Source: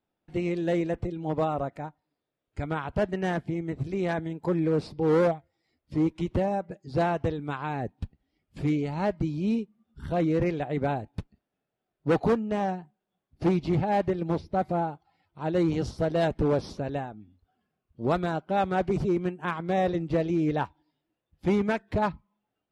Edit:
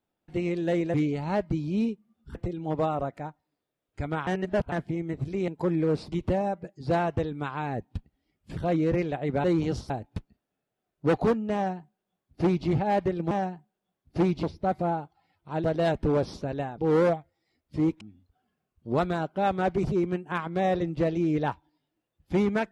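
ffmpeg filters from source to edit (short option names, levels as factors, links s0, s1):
-filter_complex "[0:a]asplit=15[s0][s1][s2][s3][s4][s5][s6][s7][s8][s9][s10][s11][s12][s13][s14];[s0]atrim=end=0.942[s15];[s1]atrim=start=8.638:end=10.052[s16];[s2]atrim=start=0.938:end=2.862[s17];[s3]atrim=start=2.858:end=3.312,asetpts=PTS-STARTPTS,areverse[s18];[s4]atrim=start=3.308:end=4.072[s19];[s5]atrim=start=4.318:end=4.962[s20];[s6]atrim=start=6.188:end=8.642[s21];[s7]atrim=start=10.048:end=10.922[s22];[s8]atrim=start=15.538:end=16.002[s23];[s9]atrim=start=10.918:end=14.332[s24];[s10]atrim=start=12.568:end=13.692[s25];[s11]atrim=start=14.328:end=15.542[s26];[s12]atrim=start=15.998:end=17.142[s27];[s13]atrim=start=4.958:end=6.192[s28];[s14]atrim=start=17.138[s29];[s15][s16]acrossfade=d=0.004:c1=hsin:c2=hsin[s30];[s30][s17]acrossfade=d=0.004:c1=hsin:c2=hsin[s31];[s31][s18]acrossfade=d=0.004:c1=hsin:c2=hsin[s32];[s32][s19]acrossfade=d=0.004:c1=hsin:c2=hsin[s33];[s33][s20]acrossfade=d=0.004:c1=hsin:c2=hsin[s34];[s34][s21]acrossfade=d=0.004:c1=hsin:c2=hsin[s35];[s35][s22]acrossfade=d=0.004:c1=hsin:c2=hsin[s36];[s36][s23]acrossfade=d=0.004:c1=hsin:c2=hsin[s37];[s37][s24]acrossfade=d=0.004:c1=hsin:c2=hsin[s38];[s38][s25]acrossfade=d=0.004:c1=hsin:c2=hsin[s39];[s39][s26]acrossfade=d=0.004:c1=hsin:c2=hsin[s40];[s40][s27]acrossfade=d=0.004:c1=hsin:c2=hsin[s41];[s41][s28]acrossfade=d=0.004:c1=hsin:c2=hsin[s42];[s42][s29]acrossfade=d=0.004:c1=hsin:c2=hsin"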